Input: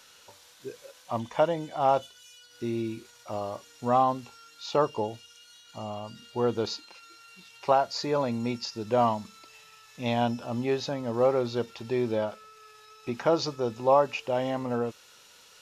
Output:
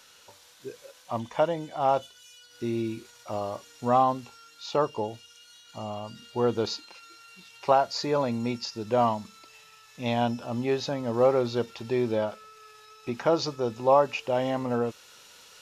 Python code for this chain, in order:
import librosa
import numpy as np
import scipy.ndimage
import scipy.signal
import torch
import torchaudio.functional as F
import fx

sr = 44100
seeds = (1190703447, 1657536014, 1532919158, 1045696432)

y = fx.rider(x, sr, range_db=3, speed_s=2.0)
y = F.gain(torch.from_numpy(y), 1.5).numpy()